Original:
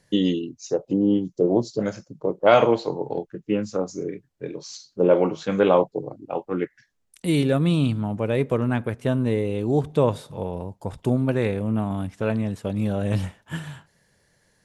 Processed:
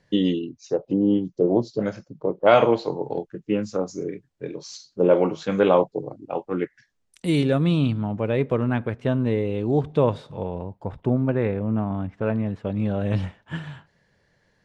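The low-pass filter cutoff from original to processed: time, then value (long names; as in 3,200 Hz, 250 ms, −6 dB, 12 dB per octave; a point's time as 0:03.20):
0:02.43 4,100 Hz
0:03.10 8,100 Hz
0:07.28 8,100 Hz
0:07.96 4,000 Hz
0:10.42 4,000 Hz
0:11.08 2,000 Hz
0:12.28 2,000 Hz
0:13.16 3,900 Hz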